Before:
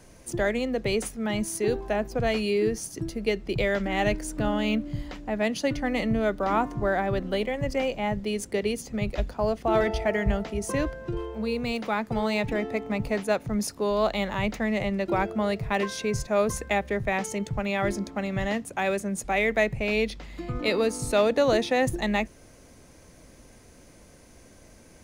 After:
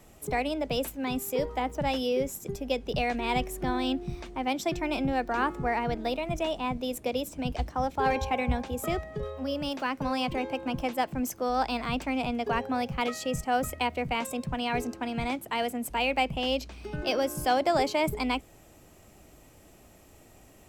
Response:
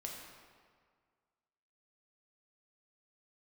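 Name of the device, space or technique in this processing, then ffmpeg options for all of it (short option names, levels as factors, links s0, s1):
nightcore: -af "asetrate=53361,aresample=44100,volume=0.708"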